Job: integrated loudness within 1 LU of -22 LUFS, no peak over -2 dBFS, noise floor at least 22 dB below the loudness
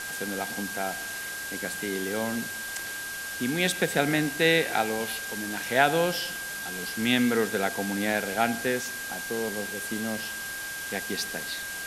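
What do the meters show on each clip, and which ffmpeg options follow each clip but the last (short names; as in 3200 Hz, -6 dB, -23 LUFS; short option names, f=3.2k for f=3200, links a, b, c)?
steady tone 1600 Hz; tone level -35 dBFS; noise floor -36 dBFS; noise floor target -50 dBFS; loudness -28.0 LUFS; peak -7.0 dBFS; loudness target -22.0 LUFS
-> -af "bandreject=f=1.6k:w=30"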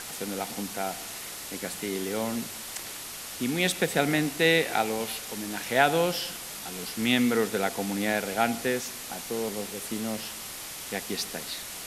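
steady tone none; noise floor -39 dBFS; noise floor target -51 dBFS
-> -af "afftdn=nr=12:nf=-39"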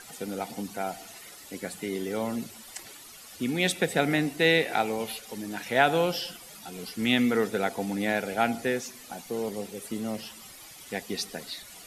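noise floor -48 dBFS; noise floor target -51 dBFS
-> -af "afftdn=nr=6:nf=-48"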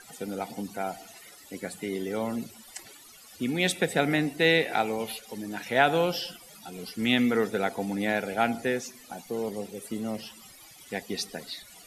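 noise floor -51 dBFS; loudness -28.5 LUFS; peak -7.0 dBFS; loudness target -22.0 LUFS
-> -af "volume=6.5dB,alimiter=limit=-2dB:level=0:latency=1"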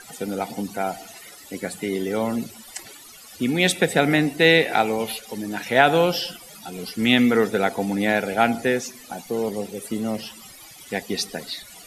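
loudness -22.5 LUFS; peak -2.0 dBFS; noise floor -45 dBFS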